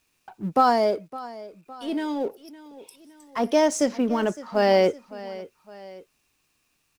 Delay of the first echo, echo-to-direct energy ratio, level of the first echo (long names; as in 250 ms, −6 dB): 561 ms, −16.5 dB, −17.5 dB